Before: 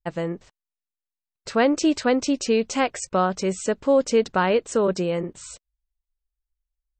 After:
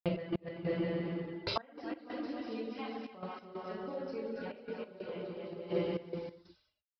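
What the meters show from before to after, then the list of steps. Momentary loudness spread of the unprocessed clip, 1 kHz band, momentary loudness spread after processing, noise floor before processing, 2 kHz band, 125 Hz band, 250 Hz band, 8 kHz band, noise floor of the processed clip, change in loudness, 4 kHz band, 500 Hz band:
13 LU, -18.0 dB, 9 LU, under -85 dBFS, -17.0 dB, -8.0 dB, -14.0 dB, under -35 dB, -78 dBFS, -17.0 dB, -12.5 dB, -15.5 dB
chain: random spectral dropouts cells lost 36%; crossover distortion -42.5 dBFS; low shelf 120 Hz +9.5 dB; non-linear reverb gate 0.43 s falling, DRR -6.5 dB; reverb removal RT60 0.63 s; on a send: bouncing-ball echo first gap 0.28 s, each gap 0.75×, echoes 5; on the sum: flipped gate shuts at -15 dBFS, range -32 dB; downsampling 11025 Hz; compressor 2.5:1, threshold -50 dBFS, peak gain reduction 18.5 dB; HPF 91 Hz 6 dB/oct; step gate "x.x.xxxxx" 93 bpm -12 dB; gain +12 dB

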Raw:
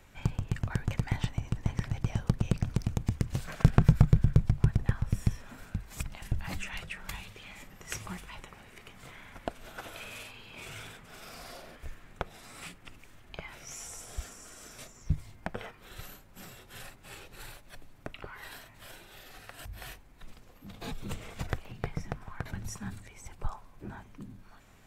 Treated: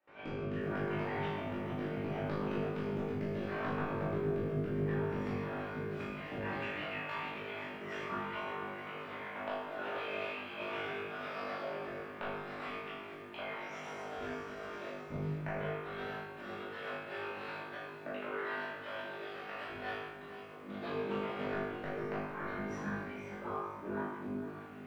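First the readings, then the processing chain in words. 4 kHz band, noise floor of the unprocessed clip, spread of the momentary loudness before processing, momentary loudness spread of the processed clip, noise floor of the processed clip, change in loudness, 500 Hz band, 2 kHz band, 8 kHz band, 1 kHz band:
-2.5 dB, -56 dBFS, 21 LU, 7 LU, -48 dBFS, -6.0 dB, +8.0 dB, +4.0 dB, under -15 dB, +5.0 dB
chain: octaver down 1 oct, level -1 dB; air absorption 360 m; rotary speaker horn 0.7 Hz, later 8 Hz, at 6.1; HPF 490 Hz 12 dB/oct; compressor 6:1, threshold -49 dBFS, peak gain reduction 19.5 dB; high shelf 2200 Hz -8.5 dB; shoebox room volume 310 m³, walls mixed, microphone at 2.6 m; gate with hold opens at -56 dBFS; flutter echo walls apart 3.4 m, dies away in 0.57 s; lo-fi delay 0.456 s, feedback 35%, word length 11-bit, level -13 dB; gain +5 dB

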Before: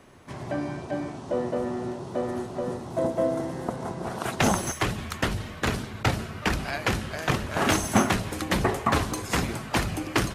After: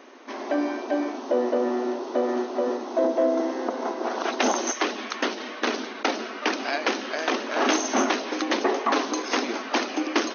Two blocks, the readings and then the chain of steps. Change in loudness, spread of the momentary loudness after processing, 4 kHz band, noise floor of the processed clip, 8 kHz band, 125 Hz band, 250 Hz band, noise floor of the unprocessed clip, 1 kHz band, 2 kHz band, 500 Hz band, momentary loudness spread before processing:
+2.0 dB, 5 LU, +3.0 dB, -37 dBFS, +1.0 dB, under -25 dB, +2.0 dB, -40 dBFS, +2.5 dB, +1.5 dB, +4.0 dB, 8 LU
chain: dynamic EQ 1700 Hz, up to -3 dB, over -35 dBFS, Q 0.85; in parallel at +0.5 dB: limiter -19 dBFS, peak gain reduction 11.5 dB; on the sum: soft clip -10 dBFS, distortion -22 dB; brick-wall FIR band-pass 230–6500 Hz

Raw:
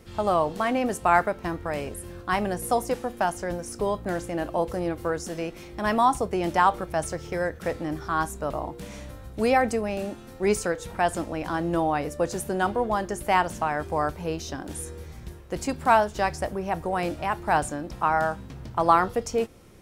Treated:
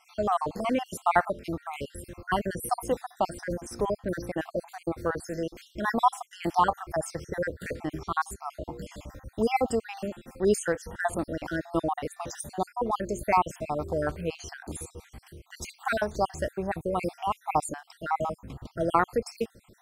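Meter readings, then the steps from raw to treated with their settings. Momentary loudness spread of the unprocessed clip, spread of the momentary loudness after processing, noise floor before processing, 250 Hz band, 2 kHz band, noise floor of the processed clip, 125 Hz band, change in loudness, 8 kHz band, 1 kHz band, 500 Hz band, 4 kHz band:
12 LU, 14 LU, -44 dBFS, -3.5 dB, -4.5 dB, -62 dBFS, -3.5 dB, -3.5 dB, -3.0 dB, -4.0 dB, -3.5 dB, -4.0 dB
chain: random spectral dropouts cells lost 58%

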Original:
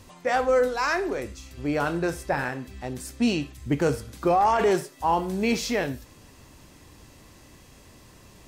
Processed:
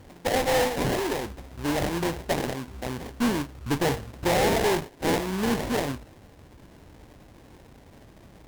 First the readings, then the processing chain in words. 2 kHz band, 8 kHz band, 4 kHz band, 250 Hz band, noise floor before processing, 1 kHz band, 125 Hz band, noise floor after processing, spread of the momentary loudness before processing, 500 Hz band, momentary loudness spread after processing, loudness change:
-1.0 dB, +3.5 dB, +4.0 dB, -0.5 dB, -52 dBFS, -4.0 dB, +1.5 dB, -52 dBFS, 12 LU, -1.5 dB, 11 LU, -1.0 dB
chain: sample-rate reducer 1300 Hz, jitter 20%; tube stage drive 21 dB, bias 0.45; gain +2.5 dB

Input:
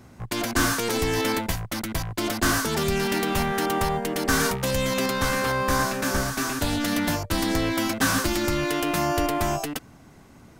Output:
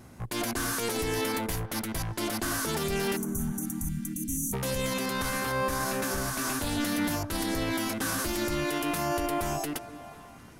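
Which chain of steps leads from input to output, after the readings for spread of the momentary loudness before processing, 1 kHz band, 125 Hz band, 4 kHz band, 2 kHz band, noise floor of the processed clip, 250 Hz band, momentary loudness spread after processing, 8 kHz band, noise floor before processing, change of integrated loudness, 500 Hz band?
6 LU, -6.5 dB, -5.5 dB, -6.5 dB, -7.0 dB, -48 dBFS, -5.0 dB, 4 LU, -3.5 dB, -50 dBFS, -5.5 dB, -6.0 dB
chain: spectral delete 3.16–4.53, 320–5700 Hz; bell 11000 Hz +8 dB 0.57 oct; vibrato 0.74 Hz 6.4 cents; limiter -20 dBFS, peak gain reduction 10.5 dB; on a send: delay with a stepping band-pass 0.242 s, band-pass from 390 Hz, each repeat 0.7 oct, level -10 dB; on the sum: gain -1.5 dB

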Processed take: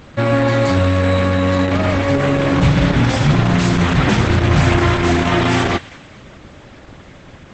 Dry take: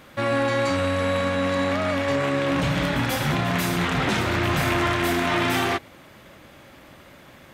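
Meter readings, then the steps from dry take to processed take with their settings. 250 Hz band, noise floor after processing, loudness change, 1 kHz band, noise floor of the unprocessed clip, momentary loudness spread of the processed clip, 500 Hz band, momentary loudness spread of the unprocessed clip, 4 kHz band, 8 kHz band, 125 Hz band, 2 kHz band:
+9.0 dB, -41 dBFS, +7.5 dB, +5.0 dB, -48 dBFS, 2 LU, +6.0 dB, 2 LU, +4.5 dB, +3.5 dB, +12.5 dB, +4.5 dB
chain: low shelf 180 Hz +11 dB; thin delay 0.199 s, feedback 43%, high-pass 1500 Hz, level -17 dB; gain +6 dB; Opus 12 kbps 48000 Hz

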